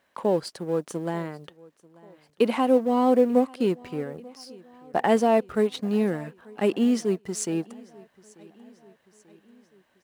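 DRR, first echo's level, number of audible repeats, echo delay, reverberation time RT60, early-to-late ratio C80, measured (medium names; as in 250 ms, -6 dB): no reverb, -24.0 dB, 3, 889 ms, no reverb, no reverb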